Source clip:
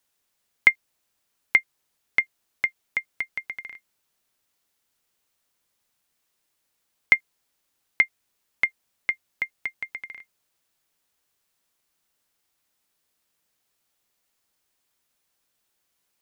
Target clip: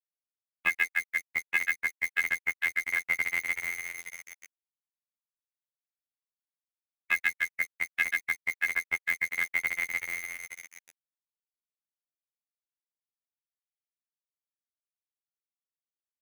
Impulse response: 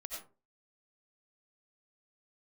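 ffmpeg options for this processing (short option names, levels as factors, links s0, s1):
-af "aecho=1:1:140|301|486.2|699.1|943.9:0.631|0.398|0.251|0.158|0.1,acontrast=74,aresample=8000,aeval=exprs='0.224*(abs(mod(val(0)/0.224+3,4)-2)-1)':c=same,aresample=44100,acrusher=bits=5:mix=0:aa=0.000001,afftfilt=real='hypot(re,im)*cos(PI*b)':imag='0':win_size=2048:overlap=0.75"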